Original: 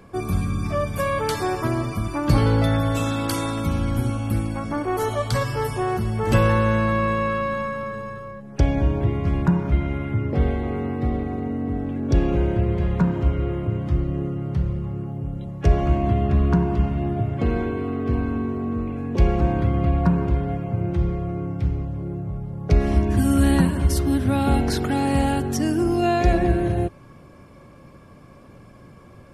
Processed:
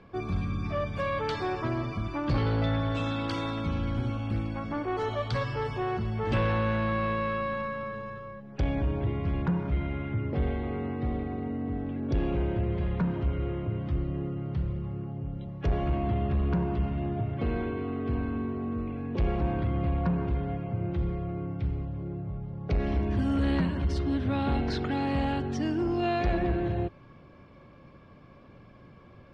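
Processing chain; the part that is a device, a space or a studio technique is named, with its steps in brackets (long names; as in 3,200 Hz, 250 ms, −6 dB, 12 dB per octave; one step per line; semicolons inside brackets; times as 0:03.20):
overdriven synthesiser ladder filter (soft clipping −14 dBFS, distortion −15 dB; transistor ladder low-pass 4,900 Hz, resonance 25%)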